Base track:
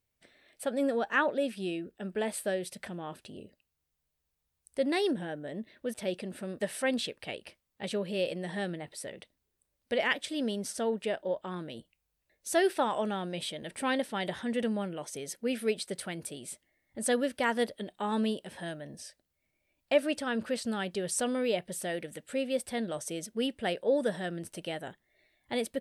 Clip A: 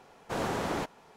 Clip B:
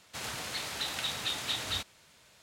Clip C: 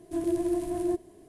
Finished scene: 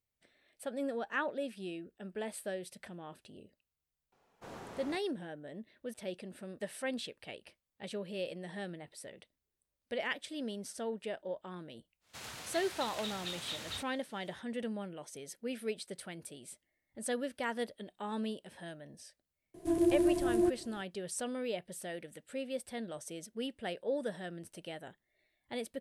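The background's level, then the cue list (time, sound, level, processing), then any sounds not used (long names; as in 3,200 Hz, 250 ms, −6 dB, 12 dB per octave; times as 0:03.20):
base track −7.5 dB
0:04.12: mix in A −16 dB
0:12.00: mix in B −8 dB, fades 0.10 s
0:19.54: mix in C −0.5 dB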